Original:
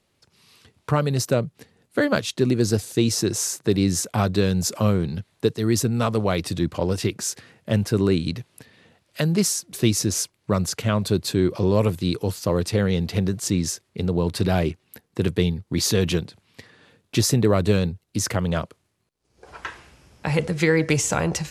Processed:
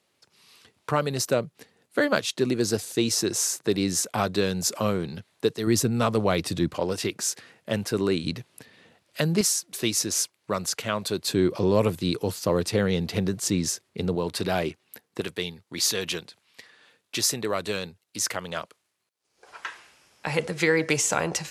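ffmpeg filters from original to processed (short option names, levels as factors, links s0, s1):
-af "asetnsamples=n=441:p=0,asendcmd='5.67 highpass f 140;6.74 highpass f 390;8.24 highpass f 190;9.41 highpass f 610;11.28 highpass f 190;14.15 highpass f 450;15.21 highpass f 1100;20.26 highpass f 420',highpass=f=360:p=1"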